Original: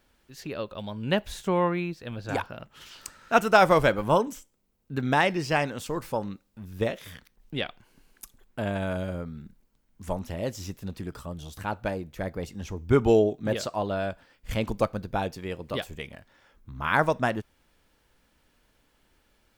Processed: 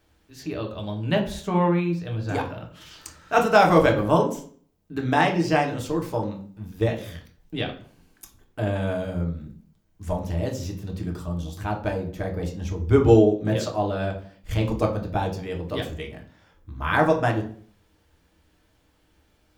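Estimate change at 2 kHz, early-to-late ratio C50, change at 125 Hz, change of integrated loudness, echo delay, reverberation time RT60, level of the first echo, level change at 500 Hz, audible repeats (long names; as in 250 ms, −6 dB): +1.0 dB, 10.0 dB, +7.0 dB, +3.5 dB, no echo audible, 0.50 s, no echo audible, +3.0 dB, no echo audible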